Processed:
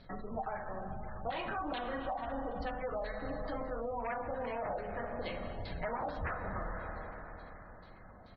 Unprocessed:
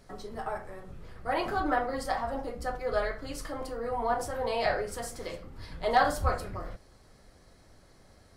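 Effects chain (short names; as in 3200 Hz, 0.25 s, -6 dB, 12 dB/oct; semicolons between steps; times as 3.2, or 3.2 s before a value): wavefolder -24.5 dBFS; LFO low-pass saw down 2.3 Hz 670–4200 Hz; Schroeder reverb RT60 3.8 s, combs from 26 ms, DRR 6.5 dB; compressor 10:1, threshold -34 dBFS, peak gain reduction 12 dB; thirty-one-band EQ 200 Hz +4 dB, 400 Hz -6 dB, 4000 Hz +5 dB, 6300 Hz +6 dB; spectral gate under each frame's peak -25 dB strong; air absorption 220 m; speakerphone echo 0.35 s, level -28 dB; gain +1 dB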